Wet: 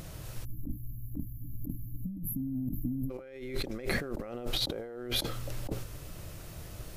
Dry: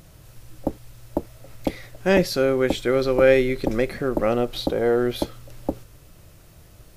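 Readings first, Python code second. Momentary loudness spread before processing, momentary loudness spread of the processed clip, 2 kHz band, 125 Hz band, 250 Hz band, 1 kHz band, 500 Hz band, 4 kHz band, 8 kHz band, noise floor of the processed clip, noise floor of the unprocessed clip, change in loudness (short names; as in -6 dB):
15 LU, 12 LU, -13.0 dB, -6.0 dB, -12.0 dB, -17.0 dB, -21.0 dB, -2.5 dB, -3.5 dB, -46 dBFS, -49 dBFS, -14.5 dB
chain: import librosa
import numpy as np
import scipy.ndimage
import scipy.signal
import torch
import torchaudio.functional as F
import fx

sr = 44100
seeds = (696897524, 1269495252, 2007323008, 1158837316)

y = fx.spec_erase(x, sr, start_s=0.45, length_s=2.66, low_hz=310.0, high_hz=11000.0)
y = fx.over_compress(y, sr, threshold_db=-33.0, ratio=-1.0)
y = y * librosa.db_to_amplitude(-3.0)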